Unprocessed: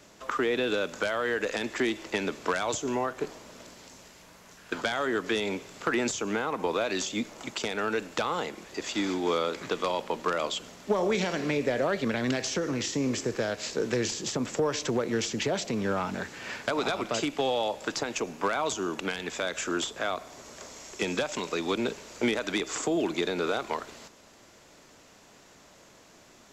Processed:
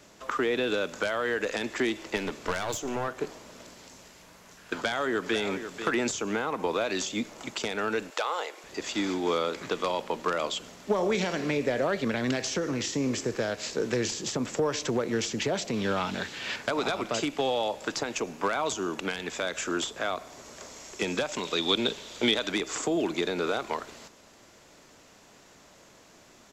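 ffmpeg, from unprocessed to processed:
ffmpeg -i in.wav -filter_complex "[0:a]asettb=1/sr,asplit=3[link_01][link_02][link_03];[link_01]atrim=end=2.164[link_04];[link_02]atrim=start=2.16:end=3.08,asetpts=PTS-STARTPTS,afade=type=in:duration=0.004:curve=qsin,afade=type=out:start_time=0.916:duration=0.004:curve=qsin,aeval=exprs='clip(val(0),-1,0.0211)':channel_layout=same[link_05];[link_03]atrim=start=3.076[link_06];[link_04][link_05]acrossfade=duration=0.004:curve1=hsin:curve2=qsin[link_07];[link_07][link_06]acrossfade=duration=0.004:curve1=qsin:curve2=hsin,asplit=2[link_08][link_09];[link_09]afade=type=in:start_time=4.73:duration=0.01,afade=type=out:start_time=5.41:duration=0.01,aecho=0:1:490|980:0.334965|0.0334965[link_10];[link_08][link_10]amix=inputs=2:normalize=0,asettb=1/sr,asplit=3[link_11][link_12][link_13];[link_11]atrim=end=8.104[link_14];[link_12]atrim=start=8.1:end=8.64,asetpts=PTS-STARTPTS,afade=type=in:duration=0.004:curve=qsin,afade=type=out:start_time=0.536:duration=0.004:curve=qsin,highpass=frequency=450:width=0.5412,highpass=frequency=450:width=1.3066[link_15];[link_13]atrim=start=8.636[link_16];[link_14][link_15]acrossfade=duration=0.004:curve1=hsin:curve2=qsin[link_17];[link_17][link_16]acrossfade=duration=0.004:curve1=qsin:curve2=hsin,asettb=1/sr,asplit=3[link_18][link_19][link_20];[link_18]atrim=end=15.744[link_21];[link_19]atrim=start=15.74:end=16.56,asetpts=PTS-STARTPTS,afade=type=in:duration=0.004:curve=qsin,afade=type=out:start_time=0.816:duration=0.004:curve=qsin,equalizer=frequency=3500:width_type=o:width=1:gain=10.5[link_22];[link_20]atrim=start=16.556[link_23];[link_21][link_22]acrossfade=duration=0.004:curve1=hsin:curve2=qsin[link_24];[link_24][link_23]acrossfade=duration=0.004:curve1=qsin:curve2=hsin,asettb=1/sr,asplit=3[link_25][link_26][link_27];[link_25]atrim=end=21.454[link_28];[link_26]atrim=start=21.45:end=22.48,asetpts=PTS-STARTPTS,afade=type=in:duration=0.004:curve=qsin,afade=type=out:start_time=1.026:duration=0.004:curve=qsin,equalizer=frequency=3500:width_type=o:width=0.42:gain=13.5[link_29];[link_27]atrim=start=22.476[link_30];[link_28][link_29]acrossfade=duration=0.004:curve1=hsin:curve2=qsin[link_31];[link_31][link_30]acrossfade=duration=0.004:curve1=qsin:curve2=hsin" out.wav

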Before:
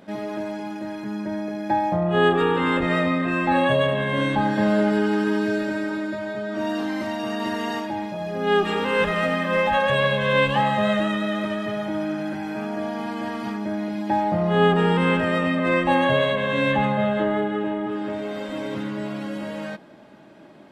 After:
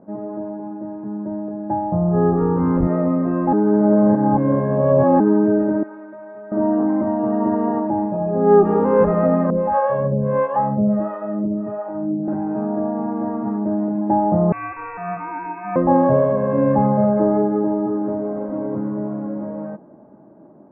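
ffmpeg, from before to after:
ffmpeg -i in.wav -filter_complex "[0:a]asettb=1/sr,asplit=3[link_01][link_02][link_03];[link_01]atrim=end=1.284[link_04];[link_02]atrim=start=1.28:end=2.87,asetpts=PTS-STARTPTS,afade=type=in:duration=0.004:curve=qsin,afade=type=out:start_time=1.586:duration=0.004:curve=qsin,asubboost=boost=8.5:cutoff=180[link_05];[link_03]atrim=start=2.866[link_06];[link_04][link_05]acrossfade=duration=0.004:curve1=hsin:curve2=qsin[link_07];[link_07][link_06]acrossfade=duration=0.004:curve1=qsin:curve2=hsin,asettb=1/sr,asplit=3[link_08][link_09][link_10];[link_08]atrim=end=5.834[link_11];[link_09]atrim=start=5.83:end=6.52,asetpts=PTS-STARTPTS,afade=type=in:duration=0.004:curve=qsin,afade=type=out:start_time=0.686:duration=0.004:curve=qsin,bandpass=frequency=4200:width_type=q:width=0.6[link_12];[link_10]atrim=start=6.516[link_13];[link_11][link_12]acrossfade=duration=0.004:curve1=hsin:curve2=qsin[link_14];[link_14][link_13]acrossfade=duration=0.004:curve1=qsin:curve2=hsin,asettb=1/sr,asplit=3[link_15][link_16][link_17];[link_15]atrim=end=9.504[link_18];[link_16]atrim=start=9.5:end=12.28,asetpts=PTS-STARTPTS,afade=type=in:duration=0.004:curve=qsin,afade=type=out:start_time=2.776:duration=0.004:curve=qsin,acrossover=split=490[link_19][link_20];[link_19]aeval=exprs='val(0)*(1-1/2+1/2*cos(2*PI*1.5*n/s))':channel_layout=same[link_21];[link_20]aeval=exprs='val(0)*(1-1/2-1/2*cos(2*PI*1.5*n/s))':channel_layout=same[link_22];[link_21][link_22]amix=inputs=2:normalize=0[link_23];[link_17]atrim=start=12.276[link_24];[link_18][link_23]acrossfade=duration=0.004:curve1=hsin:curve2=qsin[link_25];[link_25][link_24]acrossfade=duration=0.004:curve1=qsin:curve2=hsin,asettb=1/sr,asplit=3[link_26][link_27][link_28];[link_26]atrim=end=14.524[link_29];[link_27]atrim=start=14.52:end=15.76,asetpts=PTS-STARTPTS,afade=type=in:duration=0.004:curve=qsin,afade=type=out:start_time=1.236:duration=0.004:curve=qsin,lowpass=frequency=2400:width_type=q:width=0.5098,lowpass=frequency=2400:width_type=q:width=0.6013,lowpass=frequency=2400:width_type=q:width=0.9,lowpass=frequency=2400:width_type=q:width=2.563,afreqshift=-2800[link_30];[link_28]atrim=start=15.756[link_31];[link_29][link_30]acrossfade=duration=0.004:curve1=hsin:curve2=qsin[link_32];[link_32][link_31]acrossfade=duration=0.004:curve1=qsin:curve2=hsin,asplit=3[link_33][link_34][link_35];[link_33]atrim=end=3.532[link_36];[link_34]atrim=start=3.528:end=5.202,asetpts=PTS-STARTPTS,areverse[link_37];[link_35]atrim=start=5.198[link_38];[link_36][link_37]acrossfade=duration=0.004:curve1=hsin:curve2=hsin[link_39];[link_39][link_38]acrossfade=duration=0.004:curve1=hsin:curve2=hsin,dynaudnorm=framelen=920:gausssize=7:maxgain=11.5dB,lowpass=frequency=1100:width=0.5412,lowpass=frequency=1100:width=1.3066,equalizer=frequency=250:width=0.32:gain=6,volume=-4dB" out.wav

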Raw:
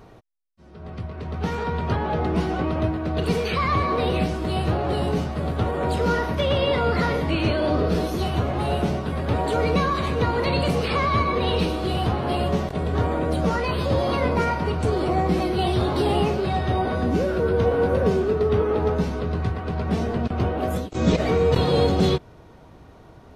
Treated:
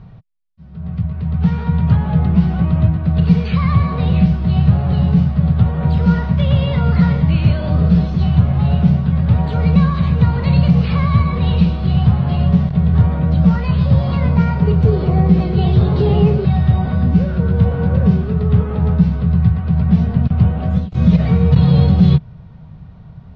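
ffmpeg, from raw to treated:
ffmpeg -i in.wav -filter_complex "[0:a]asettb=1/sr,asplit=3[link_01][link_02][link_03];[link_01]atrim=end=14.554[link_04];[link_02]atrim=start=14.55:end=16.45,asetpts=PTS-STARTPTS,afade=type=in:duration=0.004:curve=qsin,afade=type=out:start_time=1.896:duration=0.004:curve=qsin,equalizer=frequency=420:width_type=o:width=0.45:gain=13.5[link_05];[link_03]atrim=start=16.446[link_06];[link_04][link_05]acrossfade=duration=0.004:curve1=hsin:curve2=qsin[link_07];[link_07][link_06]acrossfade=duration=0.004:curve1=qsin:curve2=hsin,lowpass=frequency=4700:width=0.5412,lowpass=frequency=4700:width=1.3066,lowshelf=frequency=230:width_type=q:width=3:gain=11.5,alimiter=level_in=-1dB:limit=-1dB:release=50:level=0:latency=1,volume=-1dB" out.wav

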